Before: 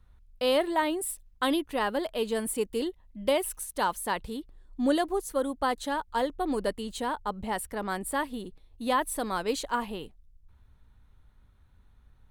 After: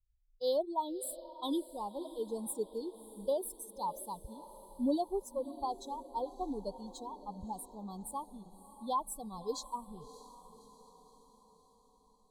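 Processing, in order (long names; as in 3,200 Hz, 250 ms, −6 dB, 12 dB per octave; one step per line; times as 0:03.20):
spectral dynamics exaggerated over time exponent 2
Chebyshev band-stop filter 1,100–3,400 Hz, order 5
feedback delay with all-pass diffusion 605 ms, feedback 55%, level −15.5 dB
level −3 dB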